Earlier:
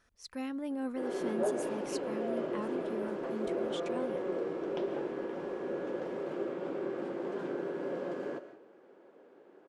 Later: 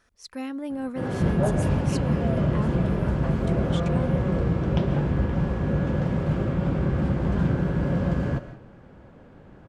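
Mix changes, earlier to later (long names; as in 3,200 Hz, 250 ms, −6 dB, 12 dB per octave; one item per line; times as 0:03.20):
speech +5.0 dB
background: remove four-pole ladder high-pass 330 Hz, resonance 55%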